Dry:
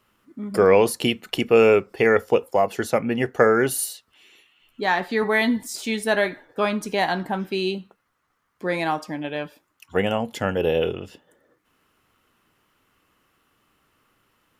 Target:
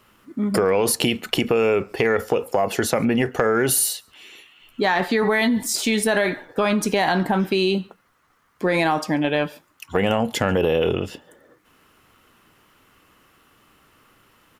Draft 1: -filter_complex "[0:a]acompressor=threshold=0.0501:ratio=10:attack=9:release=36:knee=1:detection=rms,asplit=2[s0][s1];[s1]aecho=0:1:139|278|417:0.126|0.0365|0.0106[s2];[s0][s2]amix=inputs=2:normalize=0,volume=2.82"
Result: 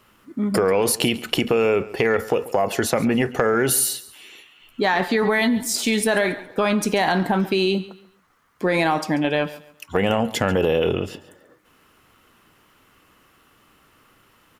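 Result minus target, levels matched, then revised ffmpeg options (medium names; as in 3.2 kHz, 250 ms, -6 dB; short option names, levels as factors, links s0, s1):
echo-to-direct +12 dB
-filter_complex "[0:a]acompressor=threshold=0.0501:ratio=10:attack=9:release=36:knee=1:detection=rms,asplit=2[s0][s1];[s1]aecho=0:1:139:0.0335[s2];[s0][s2]amix=inputs=2:normalize=0,volume=2.82"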